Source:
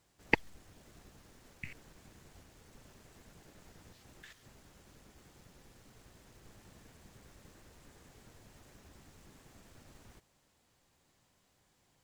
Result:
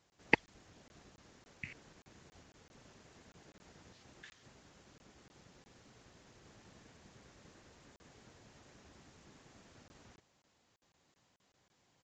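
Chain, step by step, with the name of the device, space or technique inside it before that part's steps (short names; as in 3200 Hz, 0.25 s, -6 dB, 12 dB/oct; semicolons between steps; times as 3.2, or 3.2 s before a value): call with lost packets (HPF 110 Hz 6 dB/oct; downsampling 16000 Hz; packet loss)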